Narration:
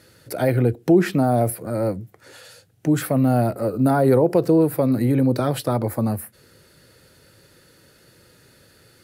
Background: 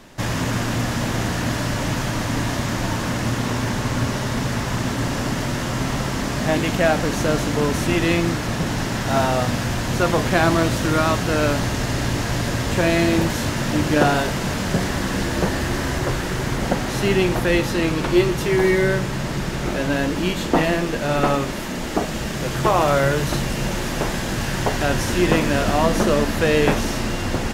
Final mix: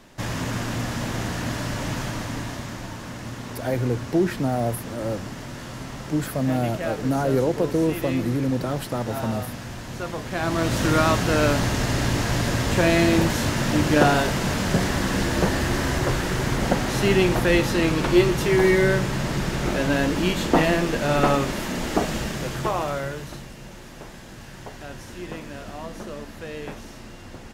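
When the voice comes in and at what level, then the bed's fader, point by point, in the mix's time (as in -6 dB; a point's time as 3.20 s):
3.25 s, -5.5 dB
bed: 2.03 s -5 dB
2.92 s -12 dB
10.27 s -12 dB
10.81 s -0.5 dB
22.13 s -0.5 dB
23.57 s -17.5 dB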